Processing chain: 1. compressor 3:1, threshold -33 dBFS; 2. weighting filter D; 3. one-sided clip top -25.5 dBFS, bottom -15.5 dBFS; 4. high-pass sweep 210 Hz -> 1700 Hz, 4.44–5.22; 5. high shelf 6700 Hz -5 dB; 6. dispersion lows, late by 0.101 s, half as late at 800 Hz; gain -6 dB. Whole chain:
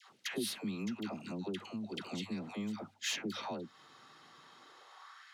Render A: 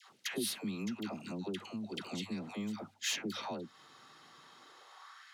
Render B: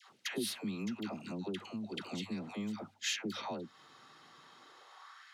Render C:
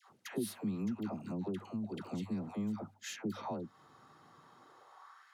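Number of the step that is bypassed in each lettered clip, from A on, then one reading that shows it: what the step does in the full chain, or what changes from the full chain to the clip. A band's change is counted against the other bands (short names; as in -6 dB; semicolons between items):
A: 5, 8 kHz band +2.5 dB; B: 3, distortion -18 dB; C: 2, 4 kHz band -11.0 dB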